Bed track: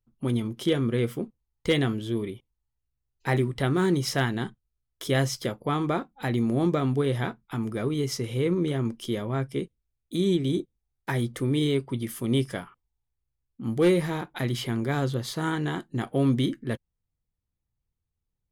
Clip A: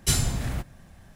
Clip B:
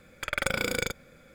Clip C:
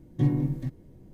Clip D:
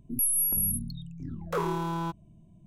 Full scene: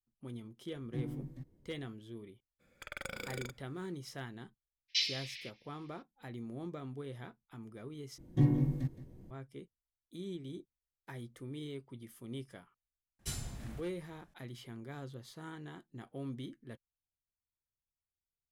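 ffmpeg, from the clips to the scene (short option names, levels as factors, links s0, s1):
-filter_complex "[3:a]asplit=2[s0][s1];[1:a]asplit=2[s2][s3];[0:a]volume=0.112[s4];[s2]asuperpass=centerf=3400:order=12:qfactor=1[s5];[s1]aecho=1:1:169:0.2[s6];[s4]asplit=2[s7][s8];[s7]atrim=end=8.184[s9];[s6]atrim=end=1.13,asetpts=PTS-STARTPTS,volume=0.668[s10];[s8]atrim=start=9.306[s11];[s0]atrim=end=1.13,asetpts=PTS-STARTPTS,volume=0.178,afade=t=in:d=0.004:c=hsin,afade=t=out:st=1.126:d=0.004:c=hsin,adelay=740[s12];[2:a]atrim=end=1.34,asetpts=PTS-STARTPTS,volume=0.188,afade=t=in:d=0.02,afade=t=out:st=1.32:d=0.02,adelay=2590[s13];[s5]atrim=end=1.15,asetpts=PTS-STARTPTS,volume=0.944,afade=t=in:d=0.02,afade=t=out:st=1.13:d=0.02,adelay=4880[s14];[s3]atrim=end=1.15,asetpts=PTS-STARTPTS,volume=0.141,afade=t=in:d=0.004:c=hsin,afade=t=out:st=1.146:d=0.004:c=hsin,adelay=13190[s15];[s9][s10]acrossfade=d=0.004:c1=hsin:c2=hsin[s16];[s16][s11]acrossfade=d=0.004:c1=hsin:c2=hsin[s17];[s17][s12][s13][s14][s15]amix=inputs=5:normalize=0"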